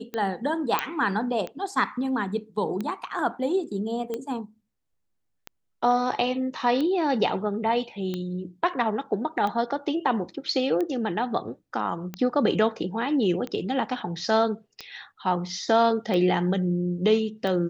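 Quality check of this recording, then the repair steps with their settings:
scratch tick 45 rpm −18 dBFS
0:00.79: click −7 dBFS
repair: click removal

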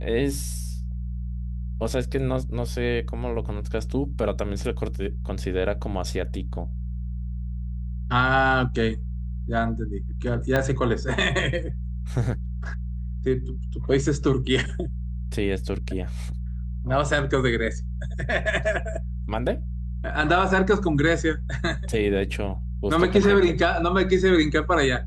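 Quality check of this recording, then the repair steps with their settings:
mains hum 60 Hz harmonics 3 −30 dBFS
0:10.56: click −10 dBFS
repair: click removal
hum removal 60 Hz, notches 3

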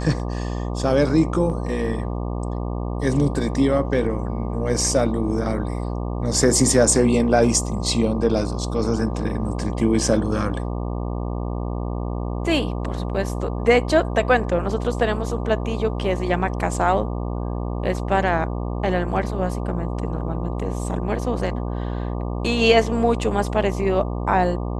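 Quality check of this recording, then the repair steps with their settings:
mains buzz 60 Hz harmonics 20 −26 dBFS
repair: hum removal 60 Hz, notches 20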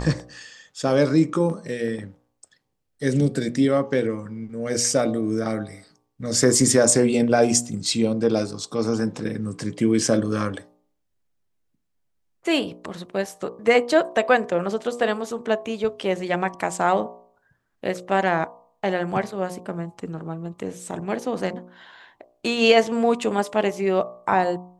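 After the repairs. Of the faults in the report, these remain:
none of them is left

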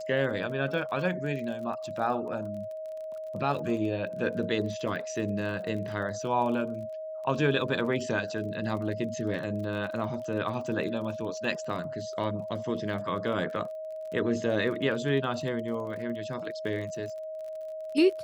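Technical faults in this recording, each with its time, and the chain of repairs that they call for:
surface crackle 28 per second −38 dBFS
whistle 630 Hz −35 dBFS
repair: click removal
notch filter 630 Hz, Q 30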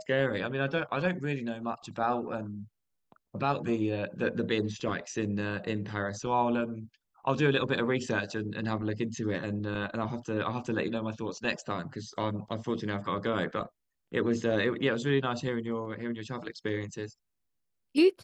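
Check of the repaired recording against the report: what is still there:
none of them is left

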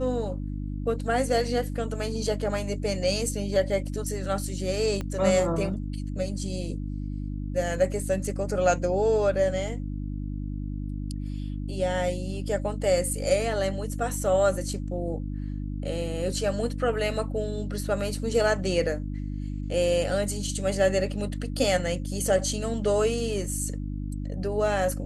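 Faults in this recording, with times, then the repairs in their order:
mains hum 50 Hz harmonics 6 −32 dBFS
0:05.01: click −19 dBFS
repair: click removal
hum removal 50 Hz, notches 6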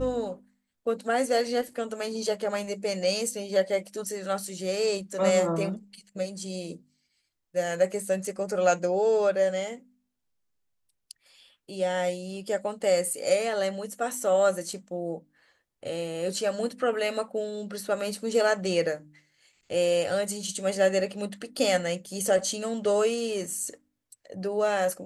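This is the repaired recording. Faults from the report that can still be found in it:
0:05.01: click

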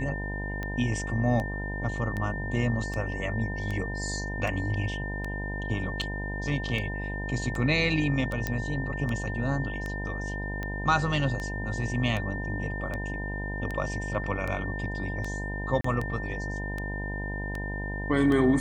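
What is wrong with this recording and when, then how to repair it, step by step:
mains buzz 50 Hz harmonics 20 −34 dBFS
scratch tick 78 rpm −20 dBFS
whistle 1,800 Hz −36 dBFS
0:08.47: click −14 dBFS
0:15.81–0:15.84: drop-out 34 ms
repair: click removal
notch filter 1,800 Hz, Q 30
hum removal 50 Hz, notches 20
repair the gap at 0:15.81, 34 ms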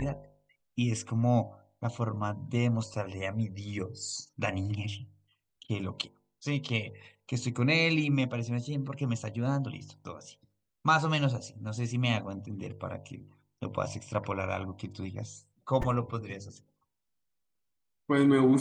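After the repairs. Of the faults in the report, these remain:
none of them is left

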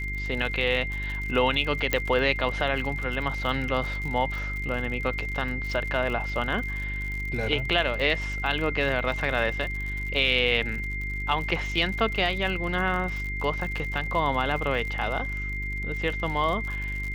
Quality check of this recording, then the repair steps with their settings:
surface crackle 60 per second −32 dBFS
mains hum 50 Hz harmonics 8 −33 dBFS
whistle 2,100 Hz −32 dBFS
0:01.93: click −8 dBFS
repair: click removal
hum removal 50 Hz, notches 8
notch filter 2,100 Hz, Q 30

